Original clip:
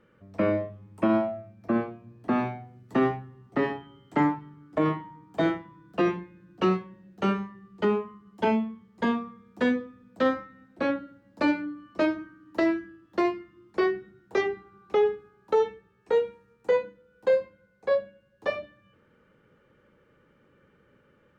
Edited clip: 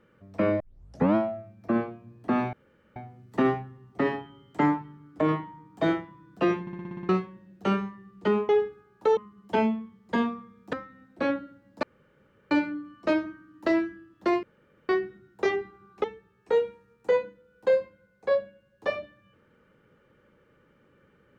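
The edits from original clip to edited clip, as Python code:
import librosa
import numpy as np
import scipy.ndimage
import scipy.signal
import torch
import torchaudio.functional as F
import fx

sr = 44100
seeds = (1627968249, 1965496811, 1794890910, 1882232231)

y = fx.edit(x, sr, fx.tape_start(start_s=0.6, length_s=0.55),
    fx.insert_room_tone(at_s=2.53, length_s=0.43),
    fx.stutter_over(start_s=6.18, slice_s=0.06, count=8),
    fx.cut(start_s=9.62, length_s=0.71),
    fx.insert_room_tone(at_s=11.43, length_s=0.68),
    fx.room_tone_fill(start_s=13.35, length_s=0.46),
    fx.move(start_s=14.96, length_s=0.68, to_s=8.06), tone=tone)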